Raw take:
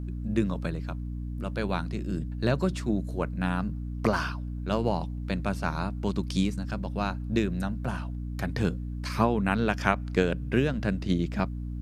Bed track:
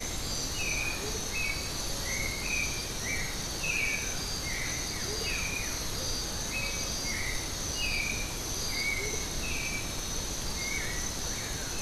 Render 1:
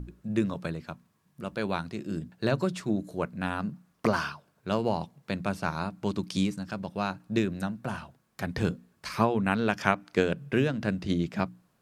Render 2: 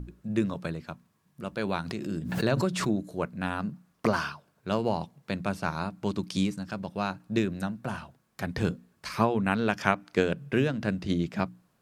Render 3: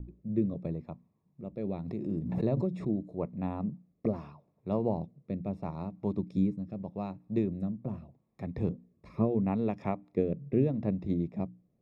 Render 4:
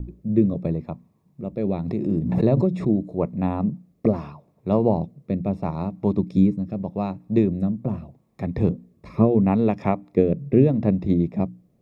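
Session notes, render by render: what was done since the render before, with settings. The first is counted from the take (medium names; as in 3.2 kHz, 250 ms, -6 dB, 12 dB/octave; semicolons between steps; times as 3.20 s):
hum notches 60/120/180/240/300 Hz
1.64–3.05 s: swell ahead of each attack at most 51 dB/s
rotary cabinet horn 0.8 Hz; boxcar filter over 29 samples
trim +10.5 dB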